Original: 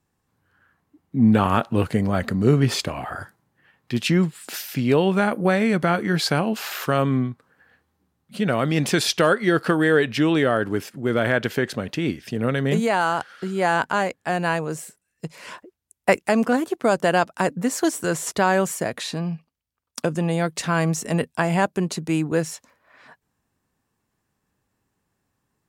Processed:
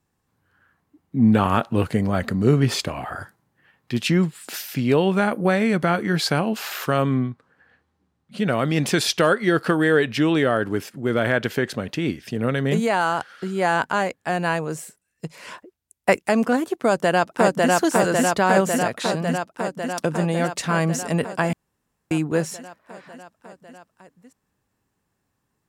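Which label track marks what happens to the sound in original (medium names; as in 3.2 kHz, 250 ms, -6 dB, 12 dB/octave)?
7.140000	8.380000	distance through air 53 m
16.760000	17.720000	echo throw 550 ms, feedback 75%, level 0 dB
21.530000	22.110000	room tone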